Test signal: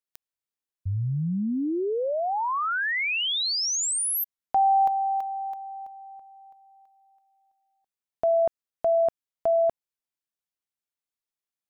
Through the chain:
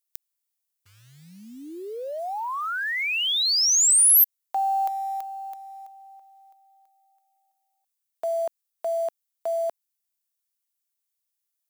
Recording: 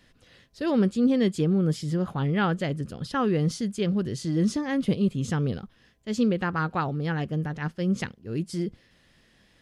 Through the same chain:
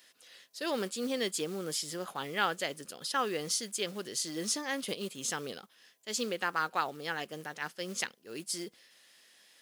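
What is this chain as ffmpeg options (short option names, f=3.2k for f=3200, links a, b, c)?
-af "crystalizer=i=3.5:c=0,acrusher=bits=7:mode=log:mix=0:aa=0.000001,highpass=480,volume=-4dB"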